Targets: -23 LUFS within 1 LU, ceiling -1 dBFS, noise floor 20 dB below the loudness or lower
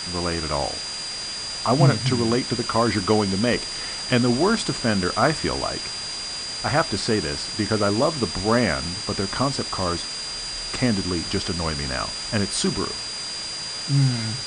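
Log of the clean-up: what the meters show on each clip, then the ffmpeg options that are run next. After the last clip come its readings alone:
steady tone 4.8 kHz; tone level -30 dBFS; noise floor -31 dBFS; noise floor target -43 dBFS; loudness -23.0 LUFS; peak level -3.5 dBFS; loudness target -23.0 LUFS
-> -af "bandreject=f=4800:w=30"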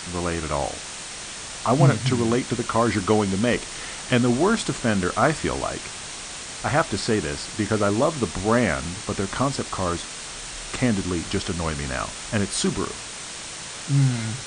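steady tone not found; noise floor -36 dBFS; noise floor target -44 dBFS
-> -af "afftdn=nr=8:nf=-36"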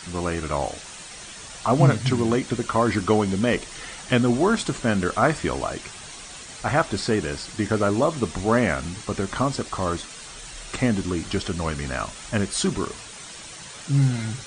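noise floor -40 dBFS; noise floor target -44 dBFS
-> -af "afftdn=nr=6:nf=-40"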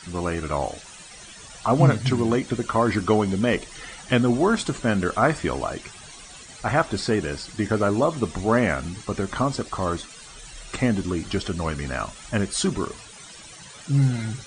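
noise floor -44 dBFS; loudness -24.0 LUFS; peak level -4.0 dBFS; loudness target -23.0 LUFS
-> -af "volume=1.12"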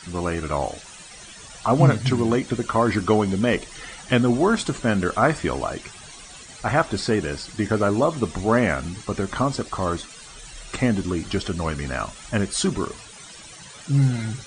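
loudness -23.0 LUFS; peak level -3.5 dBFS; noise floor -43 dBFS

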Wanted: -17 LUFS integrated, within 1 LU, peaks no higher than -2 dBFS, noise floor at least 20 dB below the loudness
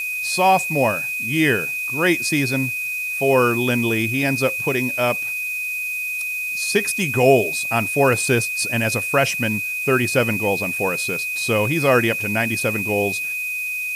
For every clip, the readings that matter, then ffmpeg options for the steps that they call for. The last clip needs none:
steady tone 2.5 kHz; tone level -23 dBFS; noise floor -26 dBFS; noise floor target -40 dBFS; loudness -19.5 LUFS; peak level -3.5 dBFS; loudness target -17.0 LUFS
-> -af "bandreject=f=2500:w=30"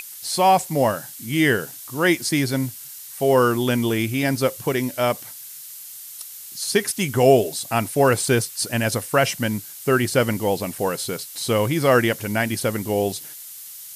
steady tone not found; noise floor -39 dBFS; noise floor target -41 dBFS
-> -af "afftdn=nr=6:nf=-39"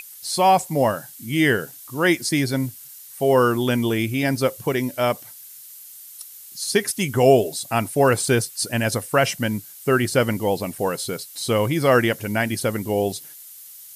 noise floor -42 dBFS; loudness -21.5 LUFS; peak level -4.5 dBFS; loudness target -17.0 LUFS
-> -af "volume=1.68,alimiter=limit=0.794:level=0:latency=1"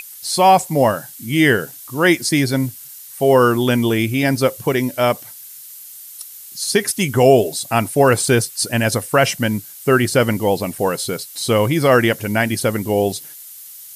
loudness -17.0 LUFS; peak level -2.0 dBFS; noise floor -38 dBFS

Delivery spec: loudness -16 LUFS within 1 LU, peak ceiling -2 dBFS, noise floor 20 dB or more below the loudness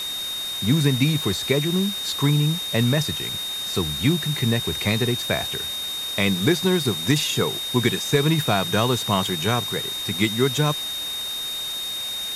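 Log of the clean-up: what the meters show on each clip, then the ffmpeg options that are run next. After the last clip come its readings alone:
steady tone 3.7 kHz; tone level -27 dBFS; noise floor -29 dBFS; noise floor target -42 dBFS; loudness -22.0 LUFS; peak level -5.5 dBFS; loudness target -16.0 LUFS
-> -af "bandreject=f=3700:w=30"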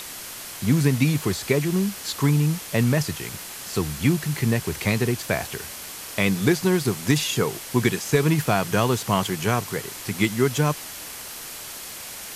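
steady tone not found; noise floor -37 dBFS; noise floor target -44 dBFS
-> -af "afftdn=nr=7:nf=-37"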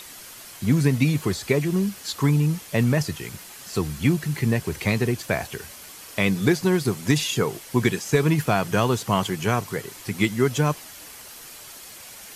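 noise floor -43 dBFS; noise floor target -44 dBFS
-> -af "afftdn=nr=6:nf=-43"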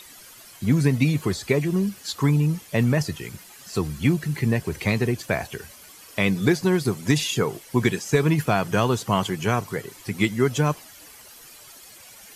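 noise floor -47 dBFS; loudness -23.5 LUFS; peak level -6.5 dBFS; loudness target -16.0 LUFS
-> -af "volume=2.37,alimiter=limit=0.794:level=0:latency=1"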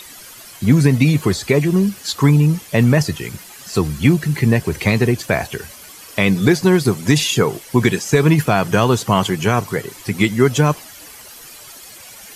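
loudness -16.5 LUFS; peak level -2.0 dBFS; noise floor -39 dBFS

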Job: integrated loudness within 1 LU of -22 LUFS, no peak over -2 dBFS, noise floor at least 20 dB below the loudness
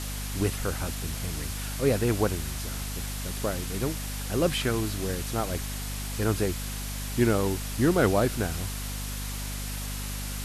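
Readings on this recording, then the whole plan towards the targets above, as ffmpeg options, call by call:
hum 50 Hz; highest harmonic 250 Hz; hum level -33 dBFS; noise floor -34 dBFS; noise floor target -49 dBFS; loudness -29.0 LUFS; peak level -10.0 dBFS; loudness target -22.0 LUFS
-> -af "bandreject=f=50:t=h:w=4,bandreject=f=100:t=h:w=4,bandreject=f=150:t=h:w=4,bandreject=f=200:t=h:w=4,bandreject=f=250:t=h:w=4"
-af "afftdn=nr=15:nf=-34"
-af "volume=2.24"

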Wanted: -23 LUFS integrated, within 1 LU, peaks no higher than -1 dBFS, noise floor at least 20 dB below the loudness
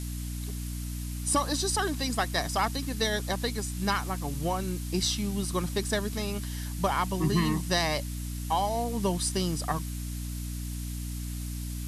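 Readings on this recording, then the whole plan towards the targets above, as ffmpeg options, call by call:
hum 60 Hz; highest harmonic 300 Hz; hum level -32 dBFS; noise floor -35 dBFS; noise floor target -50 dBFS; loudness -30.0 LUFS; peak level -12.5 dBFS; loudness target -23.0 LUFS
-> -af "bandreject=f=60:t=h:w=4,bandreject=f=120:t=h:w=4,bandreject=f=180:t=h:w=4,bandreject=f=240:t=h:w=4,bandreject=f=300:t=h:w=4"
-af "afftdn=nr=15:nf=-35"
-af "volume=2.24"

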